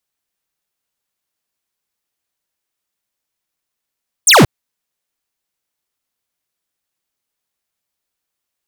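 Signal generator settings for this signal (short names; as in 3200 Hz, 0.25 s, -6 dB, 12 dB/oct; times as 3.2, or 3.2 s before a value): laser zap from 10000 Hz, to 97 Hz, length 0.18 s square, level -6.5 dB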